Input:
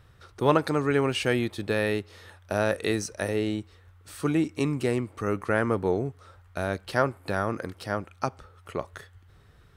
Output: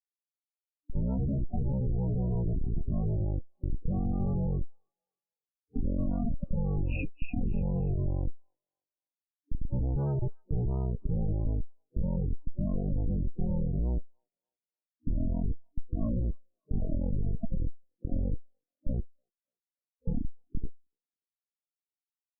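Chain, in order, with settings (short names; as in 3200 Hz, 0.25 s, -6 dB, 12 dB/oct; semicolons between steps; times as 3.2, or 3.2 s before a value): gate -50 dBFS, range -8 dB; band shelf 3200 Hz -12.5 dB 1.2 oct; rotary speaker horn 0.9 Hz, later 6 Hz, at 4.66; in parallel at +0.5 dB: negative-ratio compressor -34 dBFS, ratio -1; on the sum: Schmitt trigger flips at -25 dBFS; low shelf 99 Hz +4 dB; loudest bins only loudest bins 32; wide varispeed 0.436×; on a send: delay with a stepping band-pass 0.293 s, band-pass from 3600 Hz, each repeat 0.7 oct, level -4 dB; on the sum: gain -1.5 dB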